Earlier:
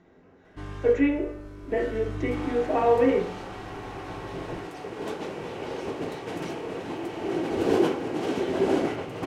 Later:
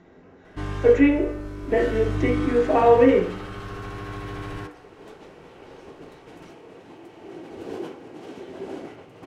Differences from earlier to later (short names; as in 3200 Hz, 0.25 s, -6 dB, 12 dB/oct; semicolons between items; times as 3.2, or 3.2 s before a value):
speech +5.5 dB; first sound +7.5 dB; second sound -11.5 dB